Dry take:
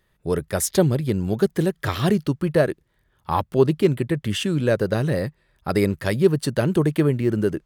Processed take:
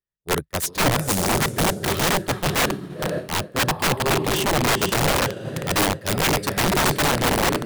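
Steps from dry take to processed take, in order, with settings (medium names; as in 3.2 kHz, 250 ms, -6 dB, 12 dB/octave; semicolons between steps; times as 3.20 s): echo that smears into a reverb 500 ms, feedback 45%, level -5 dB; integer overflow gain 15.5 dB; expander -18 dBFS; trim +3.5 dB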